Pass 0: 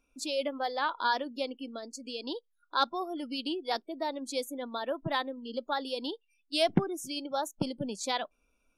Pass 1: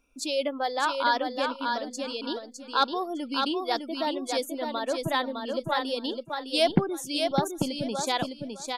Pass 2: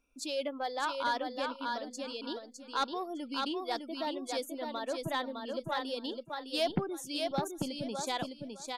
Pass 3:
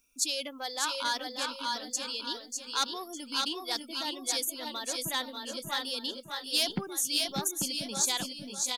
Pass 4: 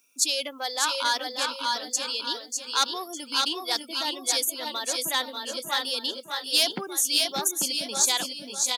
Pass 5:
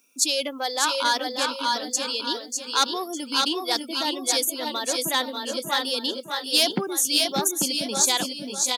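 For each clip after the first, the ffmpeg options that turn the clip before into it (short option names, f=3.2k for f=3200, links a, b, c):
-filter_complex "[0:a]acontrast=50,asplit=2[a][b];[b]aecho=0:1:608|1216|1824:0.562|0.107|0.0203[c];[a][c]amix=inputs=2:normalize=0,volume=-2dB"
-af "asoftclip=type=tanh:threshold=-14.5dB,volume=-6.5dB"
-af "crystalizer=i=7:c=0,equalizer=f=200:t=o:w=0.33:g=6,equalizer=f=630:t=o:w=0.33:g=-6,equalizer=f=6.3k:t=o:w=0.33:g=4,aecho=1:1:588:0.376,volume=-4.5dB"
-af "highpass=330,volume=6dB"
-af "equalizer=f=160:w=0.31:g=8,volume=1.5dB"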